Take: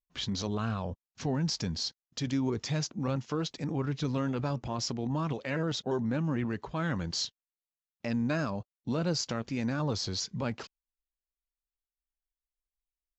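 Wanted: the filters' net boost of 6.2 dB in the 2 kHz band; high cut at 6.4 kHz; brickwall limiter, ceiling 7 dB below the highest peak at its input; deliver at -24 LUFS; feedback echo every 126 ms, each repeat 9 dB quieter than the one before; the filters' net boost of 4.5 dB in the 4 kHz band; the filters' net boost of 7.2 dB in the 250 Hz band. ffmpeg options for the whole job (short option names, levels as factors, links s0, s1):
-af "lowpass=6400,equalizer=f=250:t=o:g=8.5,equalizer=f=2000:t=o:g=7,equalizer=f=4000:t=o:g=5,alimiter=limit=0.0944:level=0:latency=1,aecho=1:1:126|252|378|504:0.355|0.124|0.0435|0.0152,volume=1.88"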